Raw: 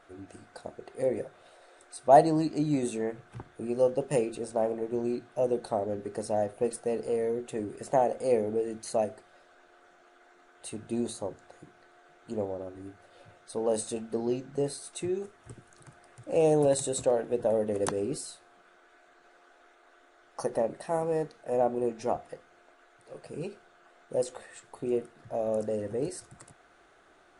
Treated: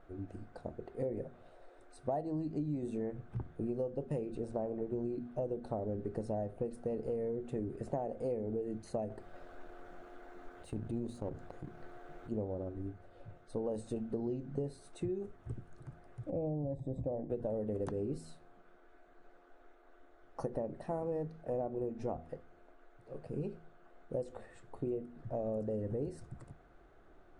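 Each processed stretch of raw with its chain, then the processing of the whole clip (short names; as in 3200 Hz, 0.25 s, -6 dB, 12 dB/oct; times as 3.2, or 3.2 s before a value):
9.1–12.32 G.711 law mismatch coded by A + transient shaper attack -11 dB, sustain -6 dB + fast leveller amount 50%
16.3–17.3 running mean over 31 samples + bell 420 Hz -13 dB 0.3 oct
whole clip: tilt -4 dB/oct; de-hum 80.63 Hz, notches 3; compressor 10:1, threshold -27 dBFS; gain -6 dB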